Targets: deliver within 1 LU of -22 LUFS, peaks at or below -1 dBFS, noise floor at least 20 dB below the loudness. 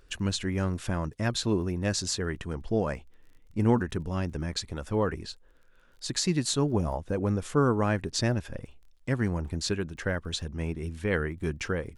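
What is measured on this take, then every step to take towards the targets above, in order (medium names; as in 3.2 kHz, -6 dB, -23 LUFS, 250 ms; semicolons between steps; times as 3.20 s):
tick rate 22 per s; loudness -29.5 LUFS; peak level -11.0 dBFS; loudness target -22.0 LUFS
-> de-click; trim +7.5 dB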